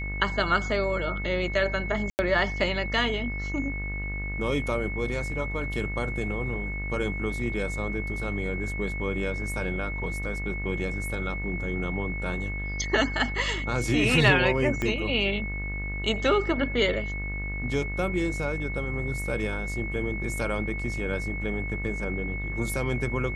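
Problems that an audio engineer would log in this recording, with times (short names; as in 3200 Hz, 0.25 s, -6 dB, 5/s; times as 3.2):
buzz 50 Hz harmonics 38 -33 dBFS
tone 2200 Hz -34 dBFS
2.1–2.19 gap 89 ms
14.82 pop -15 dBFS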